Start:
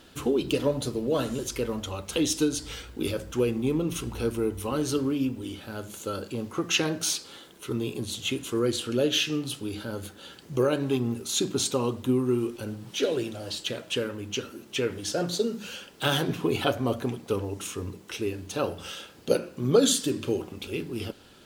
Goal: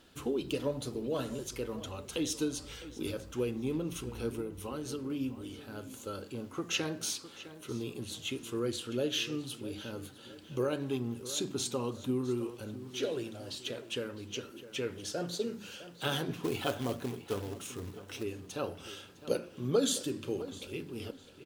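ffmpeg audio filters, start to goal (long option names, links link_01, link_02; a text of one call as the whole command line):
ffmpeg -i in.wav -filter_complex "[0:a]asettb=1/sr,asplit=3[link_01][link_02][link_03];[link_01]atrim=end=4.404[link_04];[link_02]atrim=start=4.4:end=5.1,asetpts=PTS-STARTPTS,afade=type=in:duration=0.004:curve=qsin,afade=type=out:start_time=0.696:duration=0.004:curve=qsin,acompressor=threshold=-27dB:ratio=6[link_05];[link_03]atrim=start=5.096[link_06];[link_04][link_05]acrossfade=duration=0.004:curve1=hsin:curve2=qsin[link_07];[link_07][link_06]acrossfade=duration=0.004:curve1=qsin:curve2=hsin,asettb=1/sr,asplit=3[link_08][link_09][link_10];[link_08]atrim=end=16.434[link_11];[link_09]atrim=start=16.43:end=18.23,asetpts=PTS-STARTPTS,afade=type=in:duration=0.004:curve=qsin,afade=type=out:start_time=1.796:duration=0.004:curve=qsin,acrusher=bits=3:mode=log:mix=0:aa=0.000001[link_12];[link_10]atrim=start=18.226[link_13];[link_11][link_12]acrossfade=duration=0.004:curve1=hsin:curve2=qsin[link_14];[link_14][link_13]acrossfade=duration=0.004:curve1=qsin:curve2=hsin,asplit=2[link_15][link_16];[link_16]adelay=657,lowpass=frequency=4200:poles=1,volume=-14.5dB,asplit=2[link_17][link_18];[link_18]adelay=657,lowpass=frequency=4200:poles=1,volume=0.4,asplit=2[link_19][link_20];[link_20]adelay=657,lowpass=frequency=4200:poles=1,volume=0.4,asplit=2[link_21][link_22];[link_22]adelay=657,lowpass=frequency=4200:poles=1,volume=0.4[link_23];[link_15][link_17][link_19][link_21][link_23]amix=inputs=5:normalize=0,volume=-8dB" out.wav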